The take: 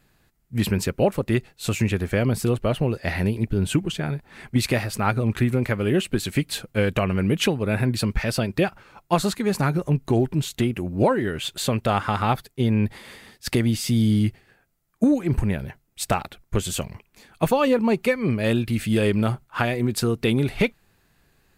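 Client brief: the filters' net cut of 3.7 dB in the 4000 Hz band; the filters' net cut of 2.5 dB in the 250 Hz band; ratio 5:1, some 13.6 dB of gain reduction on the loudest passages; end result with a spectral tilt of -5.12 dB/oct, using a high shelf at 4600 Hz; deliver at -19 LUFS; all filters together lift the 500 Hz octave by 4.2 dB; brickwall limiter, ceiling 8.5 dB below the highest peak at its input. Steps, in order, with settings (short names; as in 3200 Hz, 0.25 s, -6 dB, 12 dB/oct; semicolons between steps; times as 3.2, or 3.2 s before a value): bell 250 Hz -5 dB; bell 500 Hz +6.5 dB; bell 4000 Hz -7 dB; high shelf 4600 Hz +4 dB; compressor 5:1, threshold -27 dBFS; gain +14.5 dB; limiter -8 dBFS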